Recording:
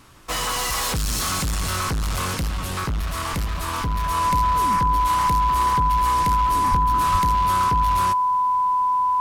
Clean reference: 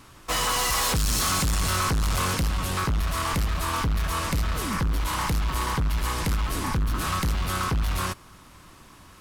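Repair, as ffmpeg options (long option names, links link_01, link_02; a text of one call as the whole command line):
ffmpeg -i in.wav -filter_complex "[0:a]bandreject=frequency=1000:width=30,asplit=3[link_01][link_02][link_03];[link_01]afade=type=out:start_time=6.7:duration=0.02[link_04];[link_02]highpass=frequency=140:width=0.5412,highpass=frequency=140:width=1.3066,afade=type=in:start_time=6.7:duration=0.02,afade=type=out:start_time=6.82:duration=0.02[link_05];[link_03]afade=type=in:start_time=6.82:duration=0.02[link_06];[link_04][link_05][link_06]amix=inputs=3:normalize=0,asplit=3[link_07][link_08][link_09];[link_07]afade=type=out:start_time=7.11:duration=0.02[link_10];[link_08]highpass=frequency=140:width=0.5412,highpass=frequency=140:width=1.3066,afade=type=in:start_time=7.11:duration=0.02,afade=type=out:start_time=7.23:duration=0.02[link_11];[link_09]afade=type=in:start_time=7.23:duration=0.02[link_12];[link_10][link_11][link_12]amix=inputs=3:normalize=0" out.wav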